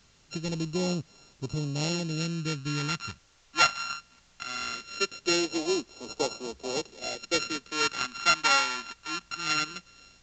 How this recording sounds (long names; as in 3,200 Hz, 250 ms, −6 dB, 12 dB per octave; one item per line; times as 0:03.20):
a buzz of ramps at a fixed pitch in blocks of 32 samples
phaser sweep stages 2, 0.2 Hz, lowest notch 440–1,600 Hz
a quantiser's noise floor 10 bits, dither triangular
mu-law